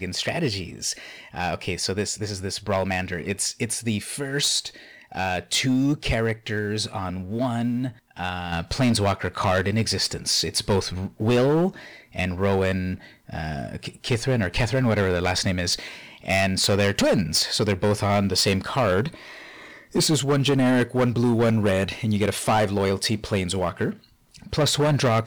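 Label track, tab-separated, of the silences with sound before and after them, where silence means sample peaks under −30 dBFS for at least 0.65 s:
19.140000	19.950000	silence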